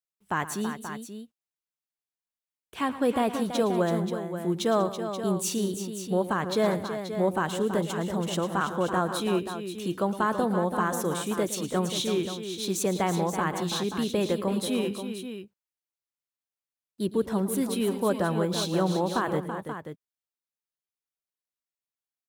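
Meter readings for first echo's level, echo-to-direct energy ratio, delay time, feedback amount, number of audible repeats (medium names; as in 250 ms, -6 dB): -14.5 dB, -6.0 dB, 112 ms, no regular repeats, 4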